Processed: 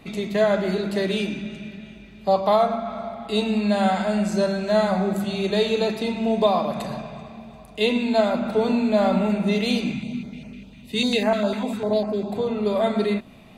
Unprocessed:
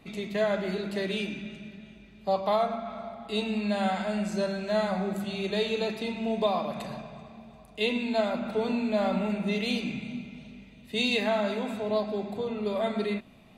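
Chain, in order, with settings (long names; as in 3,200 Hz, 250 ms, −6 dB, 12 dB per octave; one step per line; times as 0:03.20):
dynamic equaliser 2,500 Hz, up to −4 dB, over −49 dBFS, Q 1.2
0:09.93–0:12.32: notch on a step sequencer 10 Hz 480–3,600 Hz
level +7.5 dB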